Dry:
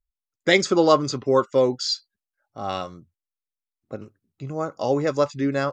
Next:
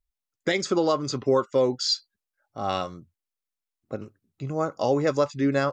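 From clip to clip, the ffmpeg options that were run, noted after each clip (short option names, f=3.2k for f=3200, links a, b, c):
-af "alimiter=limit=-13dB:level=0:latency=1:release=308,volume=1dB"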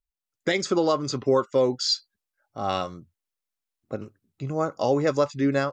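-af "dynaudnorm=f=170:g=3:m=8dB,volume=-7dB"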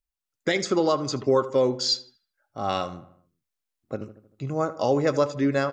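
-filter_complex "[0:a]asplit=2[a][b];[b]adelay=78,lowpass=f=2.7k:p=1,volume=-15dB,asplit=2[c][d];[d]adelay=78,lowpass=f=2.7k:p=1,volume=0.52,asplit=2[e][f];[f]adelay=78,lowpass=f=2.7k:p=1,volume=0.52,asplit=2[g][h];[h]adelay=78,lowpass=f=2.7k:p=1,volume=0.52,asplit=2[i][j];[j]adelay=78,lowpass=f=2.7k:p=1,volume=0.52[k];[a][c][e][g][i][k]amix=inputs=6:normalize=0"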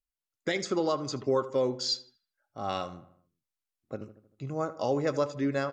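-af "volume=-5.5dB" -ar 48000 -c:a libmp3lame -b:a 128k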